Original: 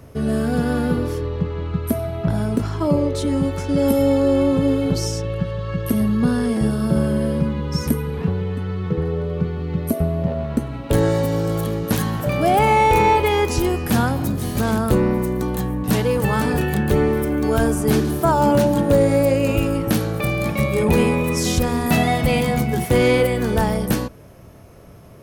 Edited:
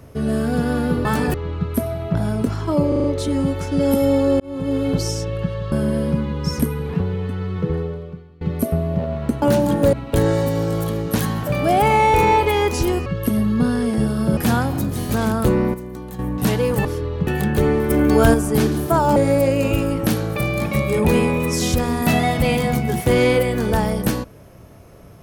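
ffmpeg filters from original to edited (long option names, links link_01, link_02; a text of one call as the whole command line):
ffmpeg -i in.wav -filter_complex "[0:a]asplit=21[link_01][link_02][link_03][link_04][link_05][link_06][link_07][link_08][link_09][link_10][link_11][link_12][link_13][link_14][link_15][link_16][link_17][link_18][link_19][link_20][link_21];[link_01]atrim=end=1.052[link_22];[link_02]atrim=start=16.308:end=16.602[link_23];[link_03]atrim=start=1.468:end=3.052[link_24];[link_04]atrim=start=3.008:end=3.052[link_25];[link_05]atrim=start=3.008:end=3.052[link_26];[link_06]atrim=start=3.008:end=3.052[link_27];[link_07]atrim=start=3.008:end=4.37,asetpts=PTS-STARTPTS,afade=type=out:start_time=1.358:duration=0.004:curve=hsin[link_28];[link_08]atrim=start=4.37:end=5.692,asetpts=PTS-STARTPTS,afade=type=in:duration=0.46[link_29];[link_09]atrim=start=6.998:end=9.69,asetpts=PTS-STARTPTS,afade=type=out:start_time=2.052:duration=0.64:curve=qua:silence=0.0707946[link_30];[link_10]atrim=start=9.69:end=10.702,asetpts=PTS-STARTPTS,afade=type=in:duration=0.004:curve=hsin:silence=0.0707946[link_31];[link_11]atrim=start=18.488:end=19.002[link_32];[link_12]atrim=start=10.698:end=13.832[link_33];[link_13]atrim=start=5.688:end=7.002[link_34];[link_14]atrim=start=13.828:end=15.202[link_35];[link_15]atrim=start=15.198:end=15.652,asetpts=PTS-STARTPTS,volume=-10dB[link_36];[link_16]atrim=start=15.648:end=16.312[link_37];[link_17]atrim=start=1.048:end=1.472[link_38];[link_18]atrim=start=16.598:end=17.232[link_39];[link_19]atrim=start=17.228:end=17.672,asetpts=PTS-STARTPTS,volume=5dB[link_40];[link_20]atrim=start=17.668:end=18.492[link_41];[link_21]atrim=start=18.998[link_42];[link_22][link_23]acrossfade=duration=0.004:curve1=hsin:curve2=hsin[link_43];[link_43][link_24]acrossfade=duration=0.004:curve1=hsin:curve2=hsin[link_44];[link_44][link_25]acrossfade=duration=0.004:curve1=hsin:curve2=hsin[link_45];[link_45][link_26]acrossfade=duration=0.004:curve1=hsin:curve2=hsin[link_46];[link_46][link_27]acrossfade=duration=0.004:curve1=hsin:curve2=hsin[link_47];[link_28][link_29]concat=n=2:v=0:a=1[link_48];[link_47][link_48]acrossfade=duration=0.004:curve1=hsin:curve2=hsin[link_49];[link_30][link_31]concat=n=2:v=0:a=1[link_50];[link_49][link_50]acrossfade=duration=0.004:curve1=hsin:curve2=hsin[link_51];[link_51][link_32]acrossfade=duration=0.004:curve1=hsin:curve2=hsin[link_52];[link_52][link_33]acrossfade=duration=0.004:curve1=hsin:curve2=hsin[link_53];[link_53][link_34]acrossfade=duration=0.004:curve1=hsin:curve2=hsin[link_54];[link_54][link_35]acrossfade=duration=0.004:curve1=hsin:curve2=hsin[link_55];[link_55][link_36]acrossfade=duration=0.004:curve1=hsin:curve2=hsin[link_56];[link_56][link_37]acrossfade=duration=0.004:curve1=hsin:curve2=hsin[link_57];[link_57][link_38]acrossfade=duration=0.004:curve1=hsin:curve2=hsin[link_58];[link_58][link_39]acrossfade=duration=0.004:curve1=hsin:curve2=hsin[link_59];[link_59][link_40]acrossfade=duration=0.004:curve1=hsin:curve2=hsin[link_60];[link_60][link_41]acrossfade=duration=0.004:curve1=hsin:curve2=hsin[link_61];[link_61][link_42]acrossfade=duration=0.004:curve1=hsin:curve2=hsin" out.wav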